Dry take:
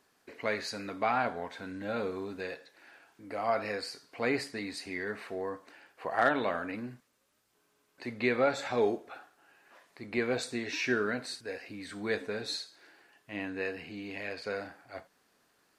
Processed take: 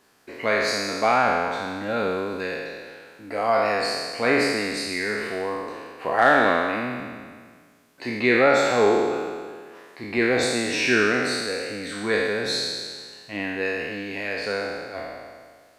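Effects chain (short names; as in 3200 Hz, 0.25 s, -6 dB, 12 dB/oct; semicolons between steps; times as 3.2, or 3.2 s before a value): spectral trails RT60 1.78 s; gain +6.5 dB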